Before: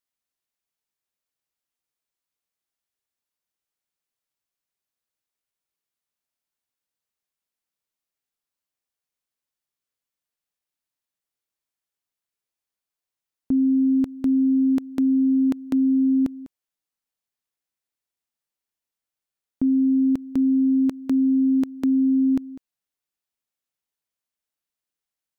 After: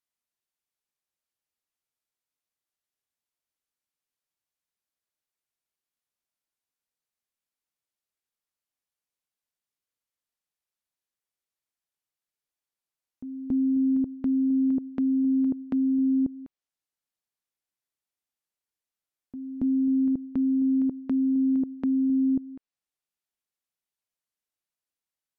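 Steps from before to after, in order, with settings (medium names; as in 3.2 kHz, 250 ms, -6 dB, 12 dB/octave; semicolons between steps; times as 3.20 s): low-pass that closes with the level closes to 480 Hz, closed at -21 dBFS; reverse echo 278 ms -13.5 dB; trim -3.5 dB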